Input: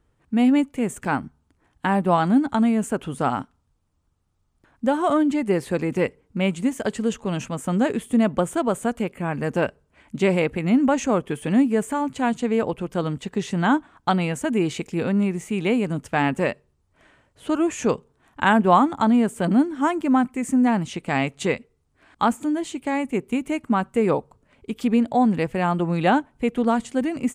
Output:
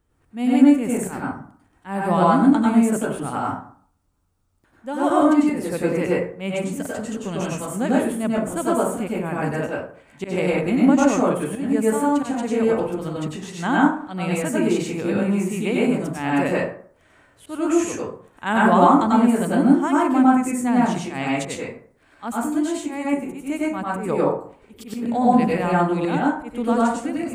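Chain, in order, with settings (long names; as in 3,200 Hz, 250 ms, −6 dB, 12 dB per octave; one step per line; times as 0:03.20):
high-shelf EQ 9,100 Hz +10.5 dB
volume swells 135 ms
dense smooth reverb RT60 0.53 s, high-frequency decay 0.5×, pre-delay 85 ms, DRR −5 dB
level −4 dB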